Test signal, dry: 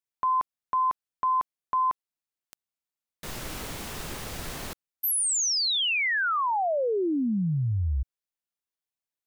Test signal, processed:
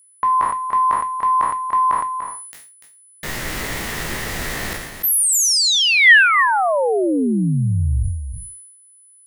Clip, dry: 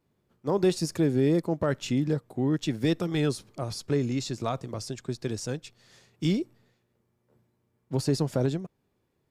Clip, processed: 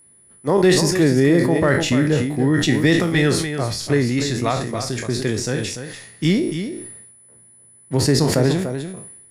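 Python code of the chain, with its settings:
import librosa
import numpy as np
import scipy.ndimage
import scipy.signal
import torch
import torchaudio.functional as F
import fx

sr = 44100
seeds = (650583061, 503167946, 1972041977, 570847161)

y = fx.spec_trails(x, sr, decay_s=0.32)
y = fx.peak_eq(y, sr, hz=1900.0, db=11.0, octaves=0.33)
y = y + 10.0 ** (-57.0 / 20.0) * np.sin(2.0 * np.pi * 10000.0 * np.arange(len(y)) / sr)
y = y + 10.0 ** (-9.0 / 20.0) * np.pad(y, (int(293 * sr / 1000.0), 0))[:len(y)]
y = fx.sustainer(y, sr, db_per_s=49.0)
y = F.gain(torch.from_numpy(y), 7.5).numpy()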